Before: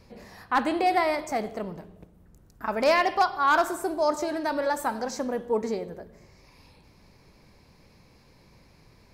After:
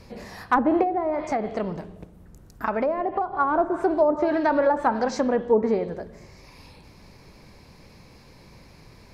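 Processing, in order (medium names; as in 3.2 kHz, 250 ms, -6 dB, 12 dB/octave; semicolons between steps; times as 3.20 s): low-pass that closes with the level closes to 590 Hz, closed at -20 dBFS; 0.82–3.32 s: compression 4:1, threshold -29 dBFS, peak gain reduction 8 dB; hard clipper -16 dBFS, distortion -44 dB; trim +7 dB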